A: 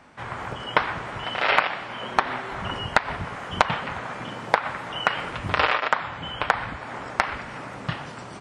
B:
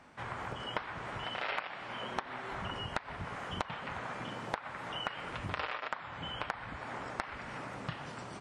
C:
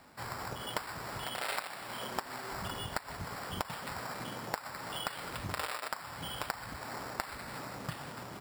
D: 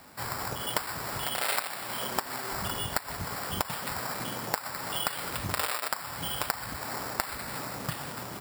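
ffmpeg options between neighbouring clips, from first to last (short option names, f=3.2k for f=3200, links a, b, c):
-af "acompressor=threshold=-30dB:ratio=3,volume=-6dB"
-af "acrusher=samples=7:mix=1:aa=0.000001"
-af "crystalizer=i=1:c=0,volume=5dB"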